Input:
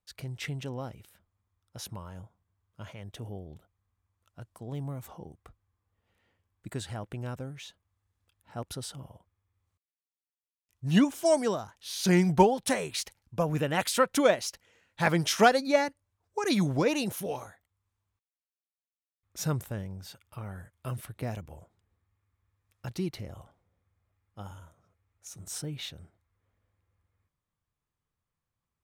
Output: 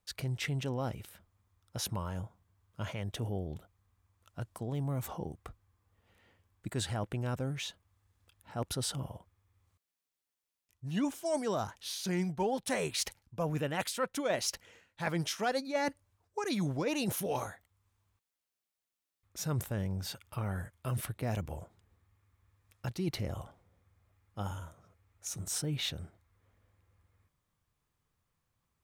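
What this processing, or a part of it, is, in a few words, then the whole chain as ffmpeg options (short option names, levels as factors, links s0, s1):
compression on the reversed sound: -af "areverse,acompressor=threshold=0.0141:ratio=6,areverse,volume=2"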